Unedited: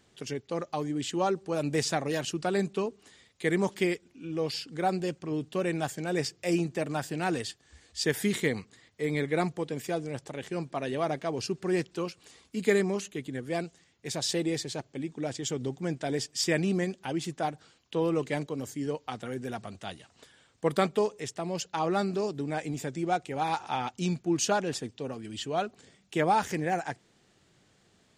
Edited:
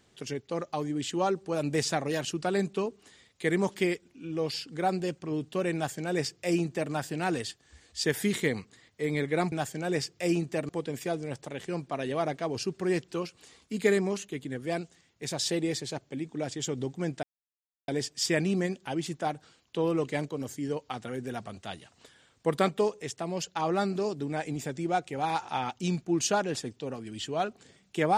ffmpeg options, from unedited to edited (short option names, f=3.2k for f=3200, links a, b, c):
-filter_complex "[0:a]asplit=4[a][b][c][d];[a]atrim=end=9.522[e];[b]atrim=start=5.748:end=6.922[f];[c]atrim=start=9.518:end=16.06,asetpts=PTS-STARTPTS,afade=t=out:st=6.538:d=0.004:c=hsin,apad=pad_dur=0.65[g];[d]atrim=start=16.06,asetpts=PTS-STARTPTS,afade=t=in:d=0.004:c=hsin[h];[e][f]acrossfade=d=0.004:c1=hsin:c2=hsin[i];[g][h]concat=n=2:v=0:a=1[j];[i][j]acrossfade=d=0.004:c1=hsin:c2=hsin"